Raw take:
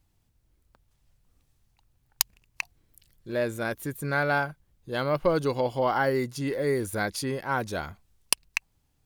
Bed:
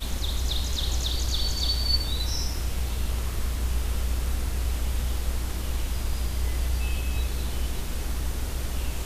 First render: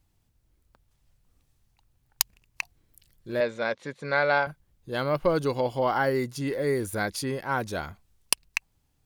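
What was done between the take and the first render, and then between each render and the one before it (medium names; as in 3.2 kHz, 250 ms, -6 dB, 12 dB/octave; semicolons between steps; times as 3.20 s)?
3.40–4.47 s: cabinet simulation 200–5700 Hz, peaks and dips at 320 Hz -9 dB, 530 Hz +7 dB, 970 Hz +4 dB, 2.1 kHz +6 dB, 3.9 kHz +6 dB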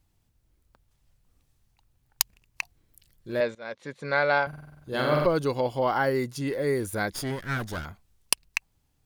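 3.55–3.97 s: fade in, from -21.5 dB; 4.48–5.26 s: flutter echo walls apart 8.1 m, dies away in 1.2 s; 7.12–7.85 s: comb filter that takes the minimum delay 0.59 ms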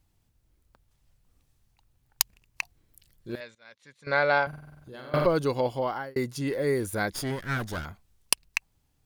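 3.35–4.07 s: amplifier tone stack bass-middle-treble 5-5-5; 4.58–5.14 s: compression 4:1, threshold -43 dBFS; 5.68–6.16 s: fade out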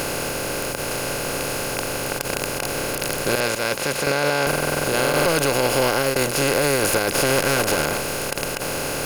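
spectral levelling over time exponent 0.2; peak limiter -8 dBFS, peak gain reduction 11.5 dB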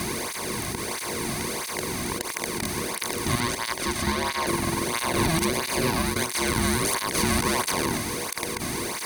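frequency shift -490 Hz; cancelling through-zero flanger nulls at 1.5 Hz, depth 2.3 ms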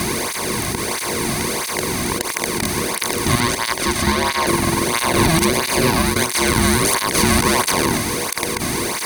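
trim +8 dB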